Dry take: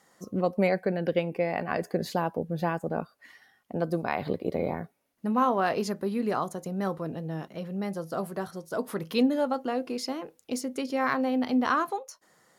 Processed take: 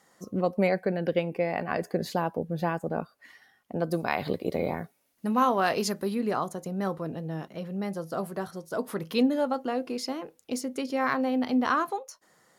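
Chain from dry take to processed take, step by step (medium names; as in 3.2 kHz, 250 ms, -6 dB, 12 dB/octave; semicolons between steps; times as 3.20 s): 3.91–6.15 s: treble shelf 2.6 kHz +8.5 dB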